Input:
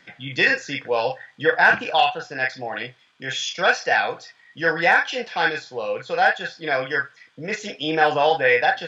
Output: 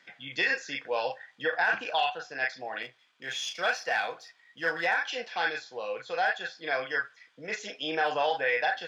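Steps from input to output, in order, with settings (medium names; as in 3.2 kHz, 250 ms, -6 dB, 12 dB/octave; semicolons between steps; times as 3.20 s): 2.82–4.87 s: partial rectifier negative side -3 dB; high-pass 460 Hz 6 dB/octave; peak limiter -11 dBFS, peak gain reduction 8 dB; trim -6 dB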